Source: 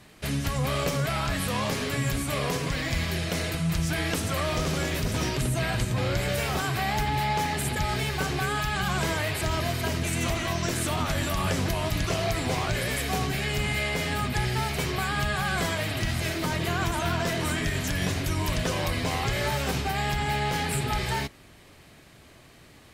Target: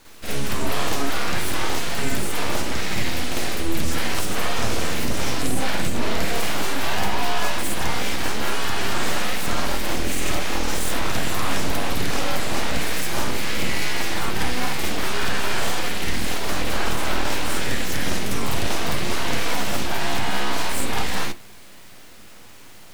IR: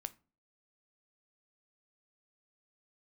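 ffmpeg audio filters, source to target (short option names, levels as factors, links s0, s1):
-filter_complex "[0:a]aeval=exprs='abs(val(0))':c=same,acrusher=bits=6:dc=4:mix=0:aa=0.000001,asplit=2[s0][s1];[1:a]atrim=start_sample=2205,adelay=51[s2];[s1][s2]afir=irnorm=-1:irlink=0,volume=2.37[s3];[s0][s3]amix=inputs=2:normalize=0"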